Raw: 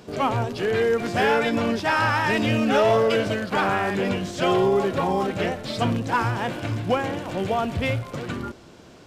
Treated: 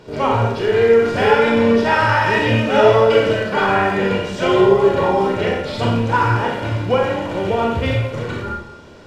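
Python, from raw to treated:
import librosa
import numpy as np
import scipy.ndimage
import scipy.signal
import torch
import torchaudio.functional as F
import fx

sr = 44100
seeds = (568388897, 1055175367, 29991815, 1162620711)

y = fx.lowpass(x, sr, hz=3500.0, slope=6)
y = y + 0.39 * np.pad(y, (int(2.1 * sr / 1000.0), 0))[:len(y)]
y = fx.rev_schroeder(y, sr, rt60_s=0.74, comb_ms=27, drr_db=-1.5)
y = y * 10.0 ** (2.5 / 20.0)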